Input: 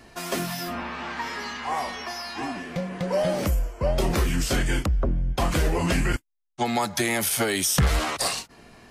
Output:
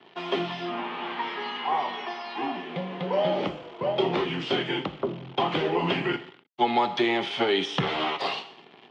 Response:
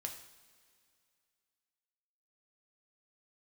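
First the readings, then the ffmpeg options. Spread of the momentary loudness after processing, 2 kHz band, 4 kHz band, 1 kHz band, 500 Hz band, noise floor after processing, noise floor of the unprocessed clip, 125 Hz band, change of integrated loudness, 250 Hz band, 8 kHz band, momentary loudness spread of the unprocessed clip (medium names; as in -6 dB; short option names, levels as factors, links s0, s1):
9 LU, -2.0 dB, +1.0 dB, +2.5 dB, +1.0 dB, -53 dBFS, -52 dBFS, -9.5 dB, -2.0 dB, -1.5 dB, under -25 dB, 9 LU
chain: -filter_complex "[0:a]asplit=2[s0][s1];[1:a]atrim=start_sample=2205,afade=t=out:st=0.36:d=0.01,atrim=end_sample=16317[s2];[s1][s2]afir=irnorm=-1:irlink=0,volume=1.58[s3];[s0][s3]amix=inputs=2:normalize=0,acrusher=bits=7:dc=4:mix=0:aa=0.000001,highpass=f=170:w=0.5412,highpass=f=170:w=1.3066,equalizer=f=220:t=q:w=4:g=-4,equalizer=f=390:t=q:w=4:g=7,equalizer=f=560:t=q:w=4:g=-3,equalizer=f=850:t=q:w=4:g=6,equalizer=f=1600:t=q:w=4:g=-5,equalizer=f=3200:t=q:w=4:g=8,lowpass=f=3500:w=0.5412,lowpass=f=3500:w=1.3066,volume=0.422"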